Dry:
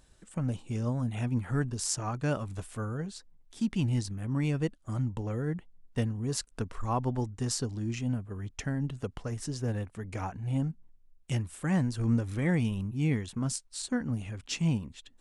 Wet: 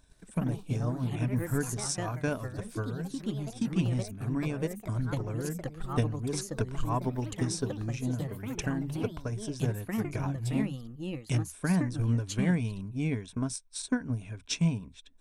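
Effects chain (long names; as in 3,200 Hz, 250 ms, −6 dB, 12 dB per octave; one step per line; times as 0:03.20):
EQ curve with evenly spaced ripples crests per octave 1.6, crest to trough 8 dB
transient designer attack +7 dB, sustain −1 dB
delay with pitch and tempo change per echo 100 ms, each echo +3 semitones, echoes 3, each echo −6 dB
level −4 dB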